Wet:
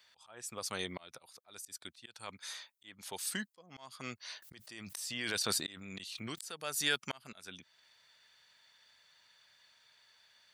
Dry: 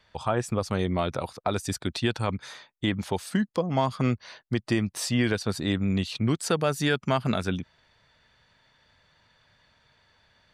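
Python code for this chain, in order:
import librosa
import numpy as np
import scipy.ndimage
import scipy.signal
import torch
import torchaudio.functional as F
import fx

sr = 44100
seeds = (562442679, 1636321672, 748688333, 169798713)

y = fx.tilt_eq(x, sr, slope=4.5)
y = fx.auto_swell(y, sr, attack_ms=541.0)
y = fx.pre_swell(y, sr, db_per_s=27.0, at=(4.42, 6.52))
y = y * librosa.db_to_amplitude(-7.5)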